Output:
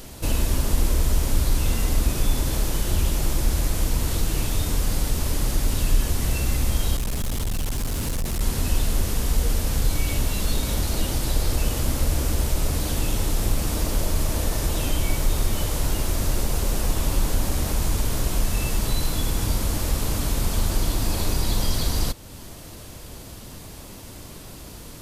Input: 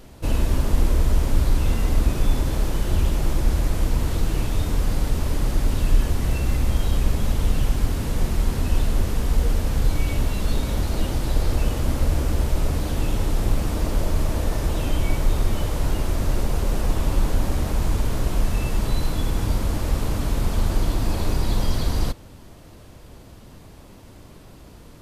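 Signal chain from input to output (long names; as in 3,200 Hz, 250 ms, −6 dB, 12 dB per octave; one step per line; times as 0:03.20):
high-shelf EQ 3,600 Hz +11.5 dB
in parallel at +2 dB: downward compressor, threshold −33 dBFS, peak gain reduction 21 dB
0:06.96–0:08.41: on the sum: gain into a clipping stage and back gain 18 dB
level −3.5 dB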